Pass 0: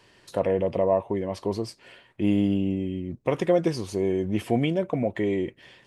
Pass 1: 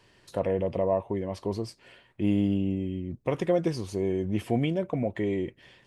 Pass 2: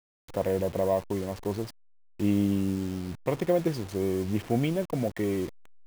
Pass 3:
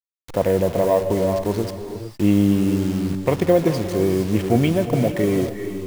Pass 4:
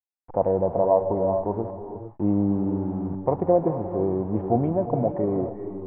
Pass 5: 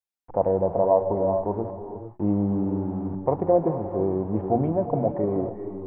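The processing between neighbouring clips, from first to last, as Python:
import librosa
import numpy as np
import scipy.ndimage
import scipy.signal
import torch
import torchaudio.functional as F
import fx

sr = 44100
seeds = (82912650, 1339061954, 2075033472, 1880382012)

y1 = fx.low_shelf(x, sr, hz=130.0, db=6.5)
y1 = F.gain(torch.from_numpy(y1), -4.0).numpy()
y2 = fx.delta_hold(y1, sr, step_db=-38.0)
y3 = fx.rev_gated(y2, sr, seeds[0], gate_ms=480, shape='rising', drr_db=7.5)
y3 = F.gain(torch.from_numpy(y3), 8.5).numpy()
y4 = fx.ladder_lowpass(y3, sr, hz=950.0, resonance_pct=60)
y4 = F.gain(torch.from_numpy(y4), 4.0).numpy()
y5 = fx.hum_notches(y4, sr, base_hz=60, count=6)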